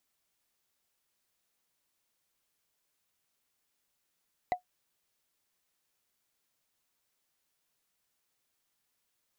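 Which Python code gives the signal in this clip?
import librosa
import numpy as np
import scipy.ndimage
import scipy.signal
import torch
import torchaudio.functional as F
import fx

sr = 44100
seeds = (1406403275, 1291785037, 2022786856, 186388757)

y = fx.strike_wood(sr, length_s=0.45, level_db=-21, body='bar', hz=725.0, decay_s=0.11, tilt_db=9.5, modes=5)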